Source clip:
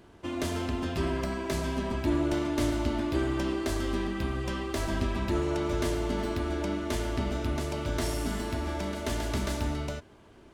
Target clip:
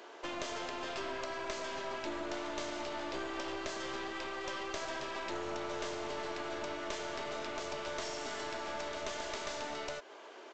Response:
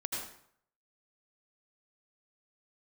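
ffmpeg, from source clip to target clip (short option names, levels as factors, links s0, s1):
-af "highpass=f=430:w=0.5412,highpass=f=430:w=1.3066,acompressor=threshold=0.00562:ratio=3,aresample=16000,aeval=exprs='clip(val(0),-1,0.00266)':c=same,aresample=44100,volume=2.51"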